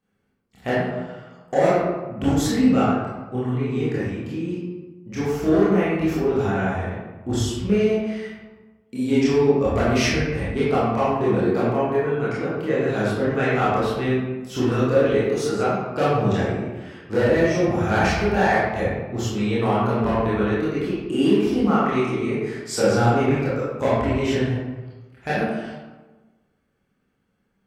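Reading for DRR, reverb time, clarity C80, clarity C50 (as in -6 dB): -10.0 dB, 1.2 s, 1.0 dB, -2.0 dB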